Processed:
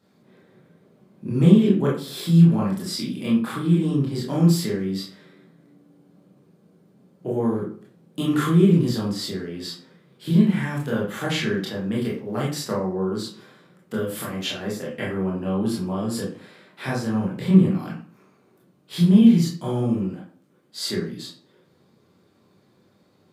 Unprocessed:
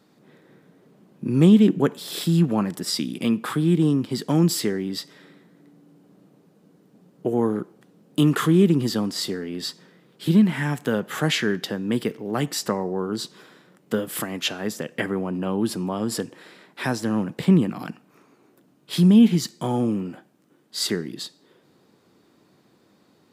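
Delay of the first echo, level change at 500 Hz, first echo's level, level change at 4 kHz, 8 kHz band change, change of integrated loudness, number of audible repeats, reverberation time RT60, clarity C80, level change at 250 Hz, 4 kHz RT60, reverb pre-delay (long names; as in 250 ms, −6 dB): no echo audible, −0.5 dB, no echo audible, −2.5 dB, −4.5 dB, +0.5 dB, no echo audible, 0.45 s, 10.5 dB, +0.5 dB, 0.30 s, 20 ms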